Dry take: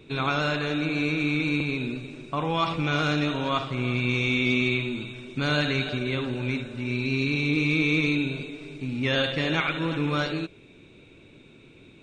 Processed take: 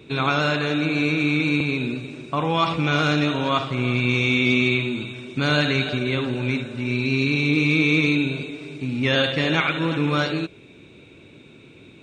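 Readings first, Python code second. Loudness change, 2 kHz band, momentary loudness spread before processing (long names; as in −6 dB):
+4.5 dB, +4.5 dB, 10 LU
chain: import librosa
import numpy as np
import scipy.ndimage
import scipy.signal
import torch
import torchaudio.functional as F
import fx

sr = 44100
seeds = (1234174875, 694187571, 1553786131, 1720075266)

y = scipy.signal.sosfilt(scipy.signal.butter(2, 62.0, 'highpass', fs=sr, output='sos'), x)
y = F.gain(torch.from_numpy(y), 4.5).numpy()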